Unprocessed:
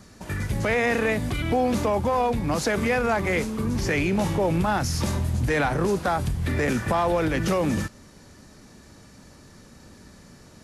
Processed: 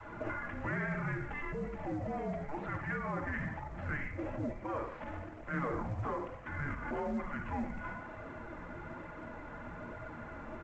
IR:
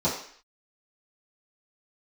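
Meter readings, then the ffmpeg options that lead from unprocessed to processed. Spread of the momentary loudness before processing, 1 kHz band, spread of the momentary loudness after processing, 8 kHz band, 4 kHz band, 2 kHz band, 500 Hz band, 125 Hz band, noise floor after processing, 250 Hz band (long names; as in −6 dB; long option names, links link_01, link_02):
4 LU, −13.5 dB, 10 LU, below −30 dB, −26.5 dB, −11.5 dB, −16.5 dB, −14.0 dB, −47 dBFS, −14.0 dB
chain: -filter_complex "[0:a]highpass=150,aecho=1:1:57|72:0.141|0.224,asplit=2[link_01][link_02];[1:a]atrim=start_sample=2205,lowshelf=frequency=390:gain=-5[link_03];[link_02][link_03]afir=irnorm=-1:irlink=0,volume=-13.5dB[link_04];[link_01][link_04]amix=inputs=2:normalize=0,flanger=delay=0.7:depth=3.3:regen=-40:speed=1.1:shape=triangular,acompressor=threshold=-37dB:ratio=2.5,asoftclip=type=tanh:threshold=-26dB,alimiter=level_in=14.5dB:limit=-24dB:level=0:latency=1:release=37,volume=-14.5dB,highpass=frequency=360:width_type=q:width=0.5412,highpass=frequency=360:width_type=q:width=1.307,lowpass=frequency=2500:width_type=q:width=0.5176,lowpass=frequency=2500:width_type=q:width=0.7071,lowpass=frequency=2500:width_type=q:width=1.932,afreqshift=-300,adynamicequalizer=threshold=0.00112:dfrequency=390:dqfactor=0.89:tfrequency=390:tqfactor=0.89:attack=5:release=100:ratio=0.375:range=3:mode=cutabove:tftype=bell,volume=12dB" -ar 16000 -c:a pcm_mulaw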